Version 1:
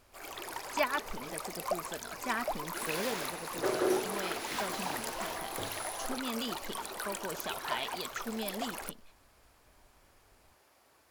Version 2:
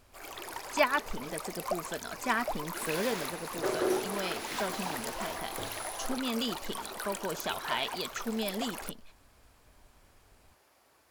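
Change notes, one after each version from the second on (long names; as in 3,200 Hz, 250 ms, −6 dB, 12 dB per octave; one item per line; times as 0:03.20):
speech +4.5 dB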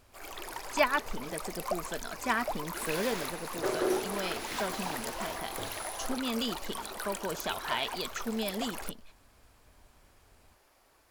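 first sound: remove high-pass filter 79 Hz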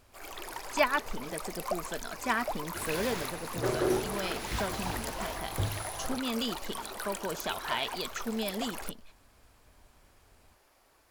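second sound: remove high-pass filter 280 Hz 12 dB per octave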